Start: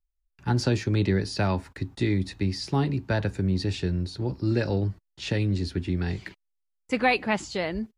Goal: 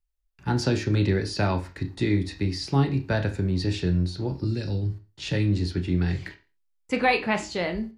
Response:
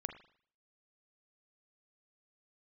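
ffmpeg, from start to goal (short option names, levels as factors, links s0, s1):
-filter_complex "[0:a]asettb=1/sr,asplit=3[s0][s1][s2];[s0]atrim=end=4.444[s3];[s1]atrim=start=4.44:end=5.33,asetpts=PTS-STARTPTS,afade=t=in:d=0.004:c=qsin,afade=t=out:st=0.886:d=0.004:c=qsin,acrossover=split=260|3000[s4][s5][s6];[s5]acompressor=threshold=0.01:ratio=6[s7];[s4][s7][s6]amix=inputs=3:normalize=0[s8];[s2]atrim=start=5.326[s9];[s3][s8]acrossfade=d=0.004:c1=hsin:c2=qsin[s10];[s10][s9]acrossfade=d=0.004:c1=qsin:c2=hsin[s11];[1:a]atrim=start_sample=2205,asetrate=74970,aresample=44100[s12];[s11][s12]afir=irnorm=-1:irlink=0,volume=2.37"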